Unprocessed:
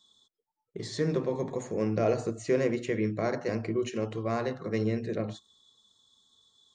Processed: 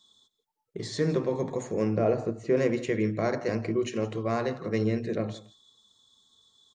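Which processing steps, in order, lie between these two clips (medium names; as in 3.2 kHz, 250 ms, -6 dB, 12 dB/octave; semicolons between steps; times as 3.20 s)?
1.96–2.57 s: low-pass 1.4 kHz 6 dB/octave; delay 168 ms -18.5 dB; trim +2 dB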